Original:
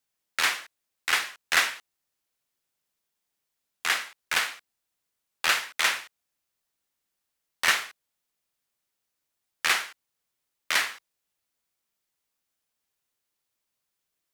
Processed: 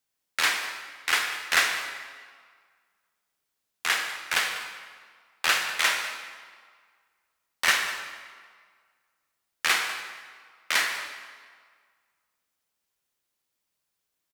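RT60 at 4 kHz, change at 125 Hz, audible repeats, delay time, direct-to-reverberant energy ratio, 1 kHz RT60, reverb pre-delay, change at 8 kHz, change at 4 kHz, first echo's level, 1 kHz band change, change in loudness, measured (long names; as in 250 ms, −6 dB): 1.3 s, can't be measured, 1, 197 ms, 4.5 dB, 1.8 s, 28 ms, +1.0 dB, +1.0 dB, −16.5 dB, +1.0 dB, +0.5 dB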